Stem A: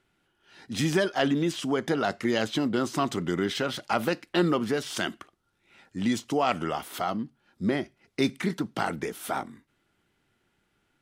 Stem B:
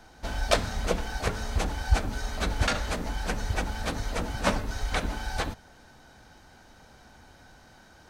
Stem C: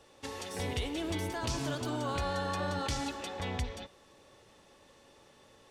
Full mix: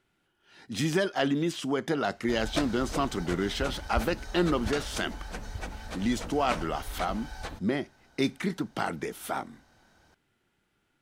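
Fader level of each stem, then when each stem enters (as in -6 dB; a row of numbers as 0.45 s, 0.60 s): -2.0 dB, -8.5 dB, mute; 0.00 s, 2.05 s, mute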